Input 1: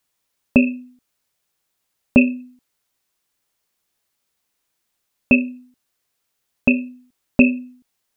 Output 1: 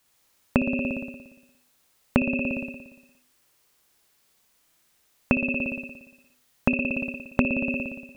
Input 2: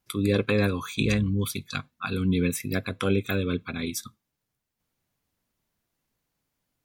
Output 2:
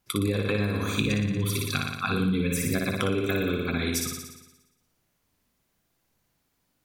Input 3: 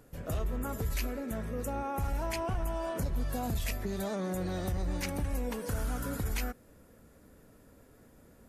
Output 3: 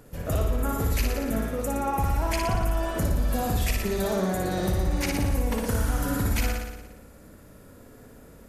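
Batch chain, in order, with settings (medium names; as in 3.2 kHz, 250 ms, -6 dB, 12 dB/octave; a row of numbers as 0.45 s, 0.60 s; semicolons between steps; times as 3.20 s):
on a send: flutter echo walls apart 10 m, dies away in 1 s; on the sum: compression 16:1, threshold -25 dBFS; normalise loudness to -27 LUFS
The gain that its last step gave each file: +6.0 dB, +3.5 dB, +6.5 dB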